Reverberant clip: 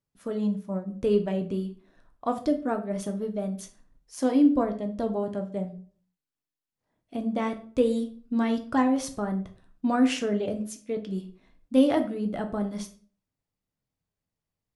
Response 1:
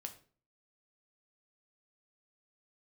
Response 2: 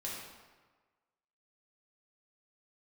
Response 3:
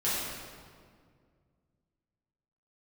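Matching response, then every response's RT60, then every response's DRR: 1; 0.45, 1.4, 2.0 s; 5.5, -5.5, -11.0 dB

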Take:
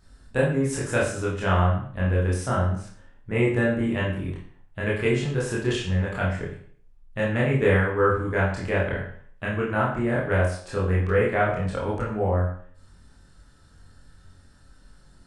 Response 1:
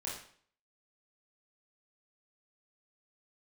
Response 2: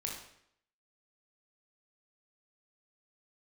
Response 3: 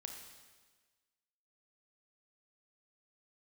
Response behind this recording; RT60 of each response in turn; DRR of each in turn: 1; 0.55, 0.70, 1.4 s; -6.0, -1.5, 3.0 dB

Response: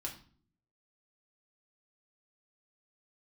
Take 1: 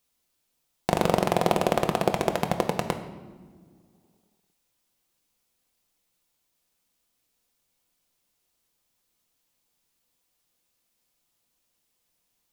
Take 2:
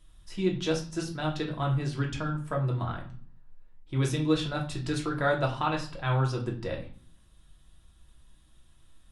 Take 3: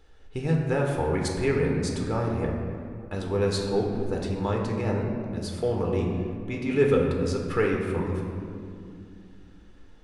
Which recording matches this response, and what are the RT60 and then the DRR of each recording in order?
2; not exponential, 0.45 s, 2.5 s; 5.0, -1.5, -0.5 dB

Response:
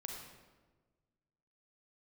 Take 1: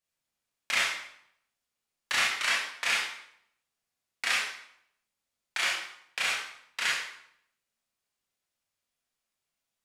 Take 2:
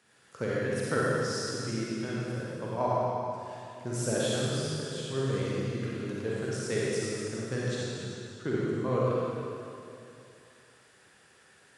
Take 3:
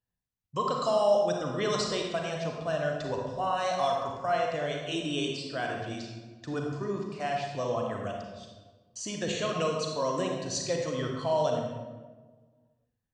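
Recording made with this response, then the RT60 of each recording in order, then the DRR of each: 3; 0.70, 2.7, 1.4 s; -5.5, -7.0, 0.5 dB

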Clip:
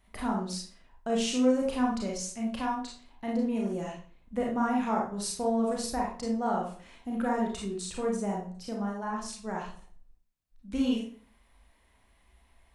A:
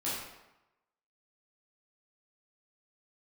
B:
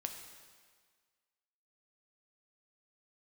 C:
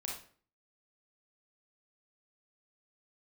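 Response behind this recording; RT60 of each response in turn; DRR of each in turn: C; 0.95, 1.7, 0.45 s; -9.5, 4.0, -2.5 dB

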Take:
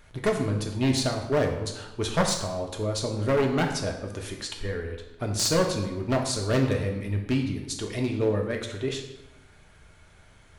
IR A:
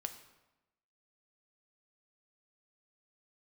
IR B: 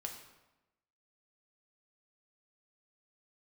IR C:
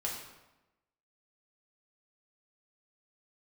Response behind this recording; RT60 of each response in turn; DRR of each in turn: B; 1.0, 1.0, 1.0 s; 6.5, 1.5, -4.0 dB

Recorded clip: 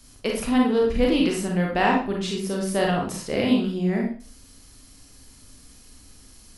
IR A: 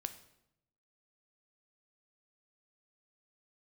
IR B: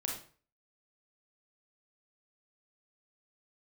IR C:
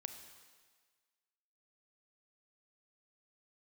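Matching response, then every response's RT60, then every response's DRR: B; 0.80, 0.40, 1.5 s; 9.0, -1.0, 7.0 dB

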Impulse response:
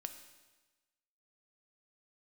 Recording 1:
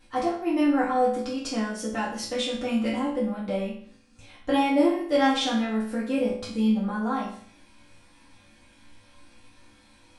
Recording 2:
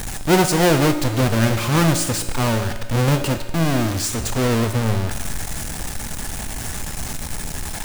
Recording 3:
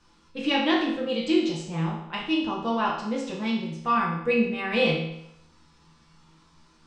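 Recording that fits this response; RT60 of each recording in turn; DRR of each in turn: 2; 0.55, 1.2, 0.75 s; -8.5, 7.0, -5.5 dB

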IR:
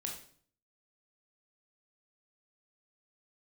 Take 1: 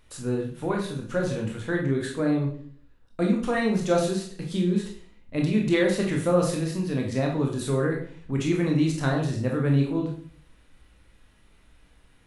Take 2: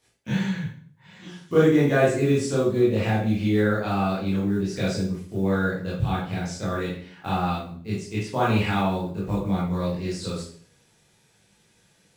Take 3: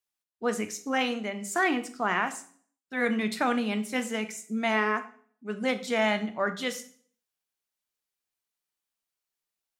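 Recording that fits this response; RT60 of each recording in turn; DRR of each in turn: 1; 0.55, 0.55, 0.55 s; 0.0, -8.0, 9.5 dB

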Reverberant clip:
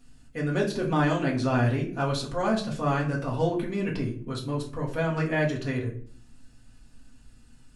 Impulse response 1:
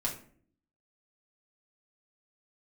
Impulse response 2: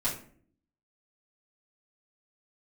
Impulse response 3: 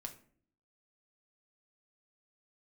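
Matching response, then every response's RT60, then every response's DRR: 1; 0.55, 0.55, 0.55 s; -3.0, -9.0, 3.5 dB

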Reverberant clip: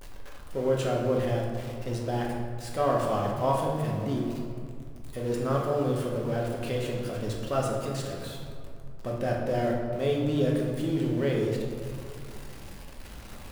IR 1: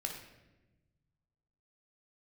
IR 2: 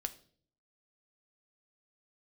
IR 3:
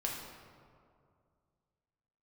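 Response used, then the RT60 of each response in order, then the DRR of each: 3; 1.1, 0.50, 2.3 s; 1.5, 8.0, -2.5 dB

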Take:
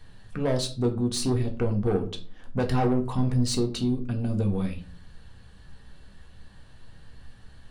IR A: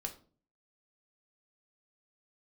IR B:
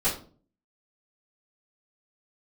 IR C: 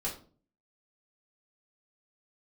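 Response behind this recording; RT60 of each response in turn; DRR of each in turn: A; 0.40, 0.40, 0.40 s; 3.0, -15.0, -6.0 dB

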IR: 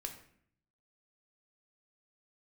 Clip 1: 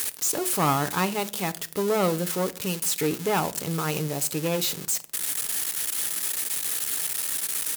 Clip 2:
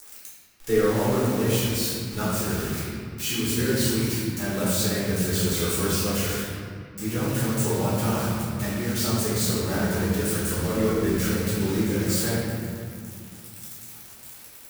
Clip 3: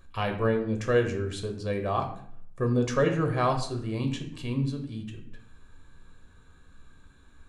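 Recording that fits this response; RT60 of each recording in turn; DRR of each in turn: 3; not exponential, 2.3 s, 0.60 s; 10.0, -10.0, 3.5 dB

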